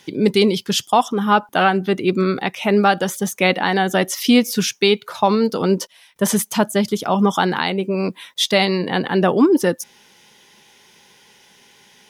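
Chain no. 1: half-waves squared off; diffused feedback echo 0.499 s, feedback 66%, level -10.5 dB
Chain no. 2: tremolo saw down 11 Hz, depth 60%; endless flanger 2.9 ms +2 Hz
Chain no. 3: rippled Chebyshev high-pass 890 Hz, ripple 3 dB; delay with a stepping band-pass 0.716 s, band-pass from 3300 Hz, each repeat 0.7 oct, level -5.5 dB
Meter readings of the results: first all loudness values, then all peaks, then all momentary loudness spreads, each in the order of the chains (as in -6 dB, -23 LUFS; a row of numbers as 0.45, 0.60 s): -13.5, -24.5, -24.0 LUFS; -1.0, -7.0, -5.0 dBFS; 14, 7, 12 LU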